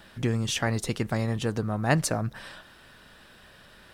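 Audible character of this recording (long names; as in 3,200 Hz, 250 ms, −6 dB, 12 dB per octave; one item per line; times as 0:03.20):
background noise floor −53 dBFS
spectral slope −5.0 dB per octave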